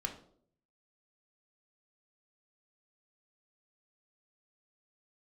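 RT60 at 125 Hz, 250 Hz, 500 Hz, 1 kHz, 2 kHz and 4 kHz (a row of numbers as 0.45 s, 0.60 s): 0.85 s, 0.75 s, 0.70 s, 0.50 s, 0.35 s, 0.40 s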